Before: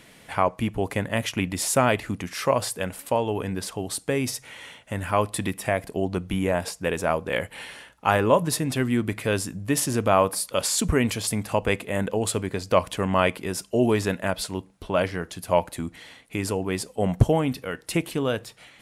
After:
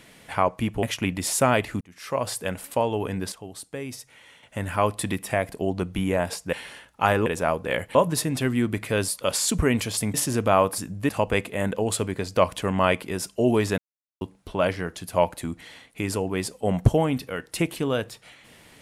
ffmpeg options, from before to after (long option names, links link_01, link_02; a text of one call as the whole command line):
ffmpeg -i in.wav -filter_complex "[0:a]asplit=14[link_01][link_02][link_03][link_04][link_05][link_06][link_07][link_08][link_09][link_10][link_11][link_12][link_13][link_14];[link_01]atrim=end=0.832[link_15];[link_02]atrim=start=1.178:end=2.16,asetpts=PTS-STARTPTS,afade=type=out:start_time=0.978:duration=0.004:curve=hsin[link_16];[link_03]atrim=start=2.16:end=3.672,asetpts=PTS-STARTPTS,afade=type=in:duration=0.61[link_17];[link_04]atrim=start=3.668:end=4.782,asetpts=PTS-STARTPTS,volume=-9dB[link_18];[link_05]atrim=start=4.778:end=6.882[link_19];[link_06]atrim=start=7.568:end=8.302[link_20];[link_07]atrim=start=6.878:end=7.572[link_21];[link_08]atrim=start=8.298:end=9.432[link_22];[link_09]atrim=start=10.378:end=11.442[link_23];[link_10]atrim=start=9.738:end=10.382[link_24];[link_11]atrim=start=9.428:end=9.742[link_25];[link_12]atrim=start=11.438:end=14.13,asetpts=PTS-STARTPTS,afade=type=out:start_time=2.688:duration=0.004:curve=hsin[link_26];[link_13]atrim=start=14.13:end=14.56,asetpts=PTS-STARTPTS,volume=0[link_27];[link_14]atrim=start=14.56,asetpts=PTS-STARTPTS,afade=type=in:duration=0.004:curve=hsin[link_28];[link_16][link_17]concat=n=2:v=0:a=1[link_29];[link_15][link_29]acrossfade=duration=0.004:curve1=hsin:curve2=hsin[link_30];[link_30][link_18]acrossfade=duration=0.004:curve1=hsin:curve2=hsin[link_31];[link_31][link_19]acrossfade=duration=0.004:curve1=hsin:curve2=hsin[link_32];[link_32][link_20]acrossfade=duration=0.004:curve1=hsin:curve2=hsin[link_33];[link_33][link_21]acrossfade=duration=0.004:curve1=hsin:curve2=hsin[link_34];[link_34][link_22]acrossfade=duration=0.004:curve1=hsin:curve2=hsin[link_35];[link_35][link_23]acrossfade=duration=0.004:curve1=hsin:curve2=hsin[link_36];[link_36][link_24]acrossfade=duration=0.004:curve1=hsin:curve2=hsin[link_37];[link_37][link_25]acrossfade=duration=0.004:curve1=hsin:curve2=hsin[link_38];[link_26][link_27][link_28]concat=n=3:v=0:a=1[link_39];[link_38][link_39]acrossfade=duration=0.004:curve1=hsin:curve2=hsin" out.wav